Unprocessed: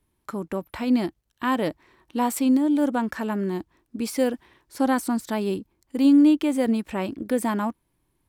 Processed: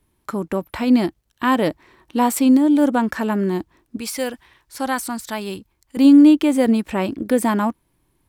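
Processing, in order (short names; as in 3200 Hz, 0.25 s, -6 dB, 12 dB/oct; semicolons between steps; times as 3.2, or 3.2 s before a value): 3.97–5.97 bell 300 Hz -11 dB 2.4 oct; gain +6 dB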